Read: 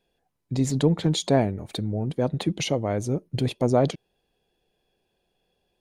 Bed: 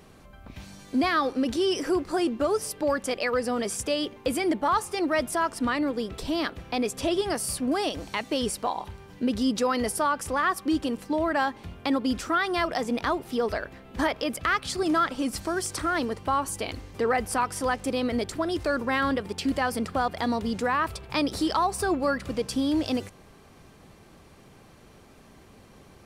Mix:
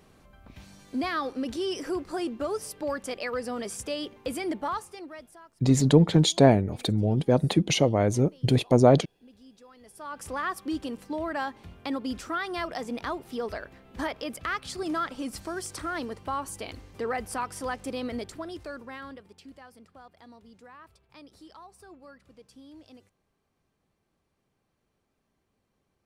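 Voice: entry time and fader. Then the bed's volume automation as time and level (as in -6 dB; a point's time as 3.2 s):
5.10 s, +3.0 dB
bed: 4.65 s -5.5 dB
5.53 s -28.5 dB
9.79 s -28.5 dB
10.24 s -6 dB
18.12 s -6 dB
19.72 s -24.5 dB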